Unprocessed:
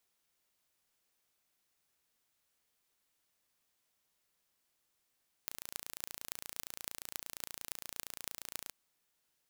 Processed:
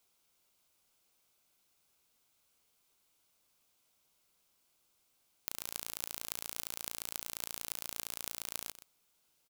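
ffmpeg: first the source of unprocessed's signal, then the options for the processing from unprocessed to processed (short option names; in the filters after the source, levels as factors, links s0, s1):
-f lavfi -i "aevalsrc='0.316*eq(mod(n,1542),0)*(0.5+0.5*eq(mod(n,12336),0))':d=3.25:s=44100"
-filter_complex "[0:a]equalizer=f=1800:w=7.9:g=-12.5,asplit=2[s0][s1];[s1]alimiter=limit=0.133:level=0:latency=1,volume=0.794[s2];[s0][s2]amix=inputs=2:normalize=0,aecho=1:1:125:0.211"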